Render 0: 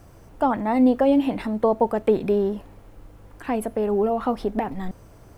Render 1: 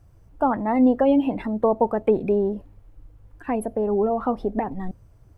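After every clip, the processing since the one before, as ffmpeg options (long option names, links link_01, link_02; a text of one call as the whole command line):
ffmpeg -i in.wav -af "afftdn=noise_reduction=14:noise_floor=-36" out.wav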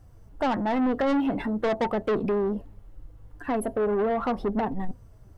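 ffmpeg -i in.wav -af "flanger=delay=3.8:depth=3.8:regen=66:speed=0.41:shape=triangular,asoftclip=type=tanh:threshold=-27.5dB,bandreject=frequency=2400:width=13,volume=6.5dB" out.wav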